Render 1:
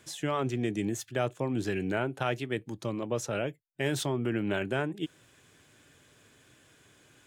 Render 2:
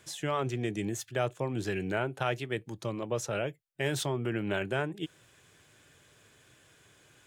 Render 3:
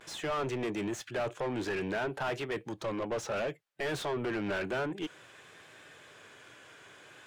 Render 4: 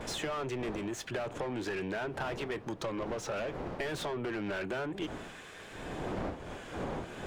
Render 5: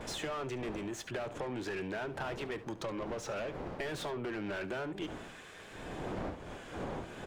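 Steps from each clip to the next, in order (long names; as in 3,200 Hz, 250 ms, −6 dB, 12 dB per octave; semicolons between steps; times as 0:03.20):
parametric band 260 Hz −6 dB 0.59 octaves
pitch vibrato 0.57 Hz 49 cents; mid-hump overdrive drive 26 dB, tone 1,700 Hz, clips at −17.5 dBFS; level −7 dB
wind on the microphone 600 Hz −42 dBFS; downward compressor 10 to 1, threshold −38 dBFS, peak gain reduction 14 dB; level +5 dB
single-tap delay 71 ms −16.5 dB; level −2.5 dB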